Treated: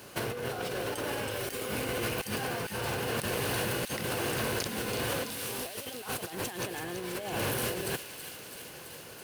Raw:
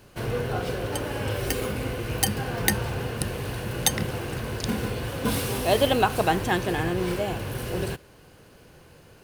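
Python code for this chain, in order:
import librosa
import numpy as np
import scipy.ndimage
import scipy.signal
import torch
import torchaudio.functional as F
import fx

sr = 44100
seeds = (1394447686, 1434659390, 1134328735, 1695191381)

p1 = fx.highpass(x, sr, hz=290.0, slope=6)
p2 = fx.high_shelf(p1, sr, hz=6100.0, db=5.0)
p3 = fx.over_compress(p2, sr, threshold_db=-36.0, ratio=-1.0)
y = p3 + fx.echo_wet_highpass(p3, sr, ms=331, feedback_pct=74, hz=2300.0, wet_db=-8.5, dry=0)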